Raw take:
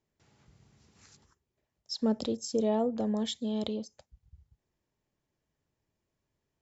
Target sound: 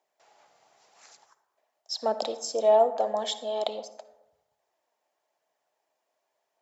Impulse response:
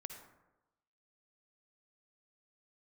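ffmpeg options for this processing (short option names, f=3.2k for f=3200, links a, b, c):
-filter_complex "[0:a]highpass=f=690:t=q:w=3.7,aphaser=in_gain=1:out_gain=1:delay=4.4:decay=0.26:speed=0.91:type=triangular,asplit=2[a][b];[1:a]atrim=start_sample=2205[c];[b][c]afir=irnorm=-1:irlink=0,volume=1dB[d];[a][d]amix=inputs=2:normalize=0"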